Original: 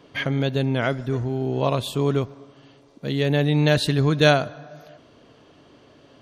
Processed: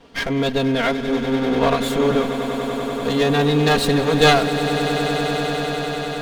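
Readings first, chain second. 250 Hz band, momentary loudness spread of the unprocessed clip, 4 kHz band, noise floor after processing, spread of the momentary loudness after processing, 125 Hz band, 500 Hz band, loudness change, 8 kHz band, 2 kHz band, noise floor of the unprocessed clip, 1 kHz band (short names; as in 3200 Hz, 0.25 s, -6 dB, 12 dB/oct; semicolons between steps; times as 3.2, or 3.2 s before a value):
+5.0 dB, 9 LU, +6.0 dB, -26 dBFS, 9 LU, -2.0 dB, +5.0 dB, +2.5 dB, +8.0 dB, +5.0 dB, -53 dBFS, +8.5 dB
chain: minimum comb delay 4.3 ms; on a send: swelling echo 97 ms, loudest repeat 8, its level -14.5 dB; on the sum: gain +4 dB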